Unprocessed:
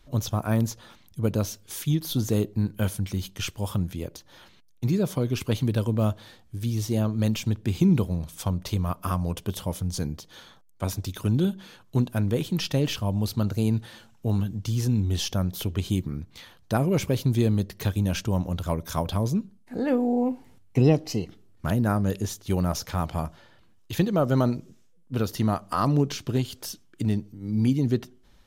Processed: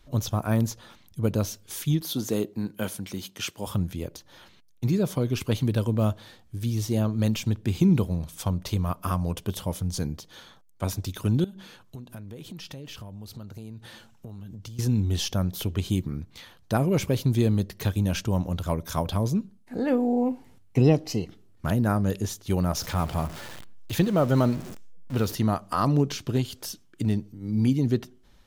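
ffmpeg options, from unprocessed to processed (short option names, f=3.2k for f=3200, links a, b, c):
-filter_complex "[0:a]asettb=1/sr,asplit=3[a][b][c];[a]atrim=end=2.024[d];[b]atrim=start=2.02:end=3.67,asetpts=PTS-STARTPTS,afade=t=in:d=0.004:c=qsin,afade=t=out:st=1.646:d=0.004:c=qsin,highpass=200[e];[c]atrim=start=3.666[f];[d][e]acrossfade=d=0.004:c1=hsin:c2=qsin[g];[g][f]acrossfade=d=0.004:c1=qsin:c2=hsin,asettb=1/sr,asplit=3[h][i][j];[h]atrim=end=11.444[k];[i]atrim=start=11.44:end=14.79,asetpts=PTS-STARTPTS,afade=t=in:d=0.004:c=qsin,afade=t=out:st=3.346:d=0.004:c=qsin,acompressor=threshold=-36dB:ratio=16:attack=3.2:release=140:knee=1:detection=peak[l];[j]atrim=start=14.786[m];[k][l]acrossfade=d=0.004:c1=hsin:c2=qsin[n];[n][m]acrossfade=d=0.004:c1=qsin:c2=hsin,asettb=1/sr,asplit=3[o][p][q];[o]atrim=end=22.774[r];[p]atrim=start=22.77:end=25.35,asetpts=PTS-STARTPTS,afade=t=in:d=0.004:c=qsin,afade=t=out:st=2.576:d=0.004:c=qsin,aeval=exprs='val(0)+0.5*0.0178*sgn(val(0))':c=same[s];[q]atrim=start=25.346[t];[r][s]acrossfade=d=0.004:c1=hsin:c2=qsin[u];[u][t]acrossfade=d=0.004:c1=qsin:c2=hsin"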